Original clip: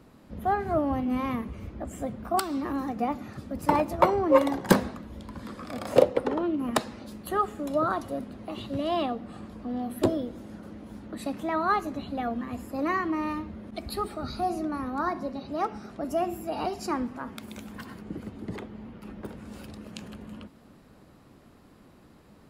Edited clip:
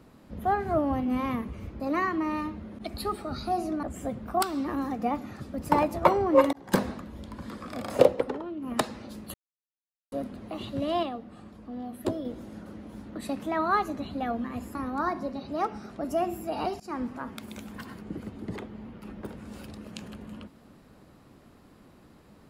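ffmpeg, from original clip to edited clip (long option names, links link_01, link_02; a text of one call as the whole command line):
ffmpeg -i in.wav -filter_complex "[0:a]asplit=12[link_01][link_02][link_03][link_04][link_05][link_06][link_07][link_08][link_09][link_10][link_11][link_12];[link_01]atrim=end=1.802[link_13];[link_02]atrim=start=12.718:end=14.752[link_14];[link_03]atrim=start=1.798:end=4.5,asetpts=PTS-STARTPTS,afade=type=out:start_time=2.698:duration=0.004:curve=hsin[link_15];[link_04]atrim=start=4.5:end=6.38,asetpts=PTS-STARTPTS,afade=type=in:duration=0.38,afade=type=out:start_time=1.61:duration=0.27:silence=0.354813[link_16];[link_05]atrim=start=6.38:end=6.54,asetpts=PTS-STARTPTS,volume=-9dB[link_17];[link_06]atrim=start=6.54:end=7.31,asetpts=PTS-STARTPTS,afade=type=in:duration=0.27:silence=0.354813,afade=type=out:start_time=0.766:duration=0.004:curve=hsin[link_18];[link_07]atrim=start=7.31:end=8.09,asetpts=PTS-STARTPTS,volume=0[link_19];[link_08]atrim=start=8.09:end=9.002,asetpts=PTS-STARTPTS,afade=type=in:duration=0.004:curve=hsin[link_20];[link_09]atrim=start=8.998:end=10.222,asetpts=PTS-STARTPTS,volume=-5.5dB[link_21];[link_10]atrim=start=10.218:end=12.722[link_22];[link_11]atrim=start=14.748:end=16.8,asetpts=PTS-STARTPTS,afade=type=out:start_time=2.048:duration=0.004:curve=hsin:silence=0.0707946[link_23];[link_12]atrim=start=16.8,asetpts=PTS-STARTPTS,afade=type=in:duration=0.27:silence=0.0707946[link_24];[link_13][link_14]acrossfade=duration=0.004:curve1=hsin:curve2=hsin[link_25];[link_15][link_16][link_17][link_18][link_19][link_20]concat=n=6:v=0:a=1[link_26];[link_25][link_26]acrossfade=duration=0.004:curve1=hsin:curve2=hsin[link_27];[link_27][link_21]acrossfade=duration=0.004:curve1=hsin:curve2=hsin[link_28];[link_28][link_22]acrossfade=duration=0.004:curve1=hsin:curve2=hsin[link_29];[link_23][link_24]concat=n=2:v=0:a=1[link_30];[link_29][link_30]acrossfade=duration=0.004:curve1=hsin:curve2=hsin" out.wav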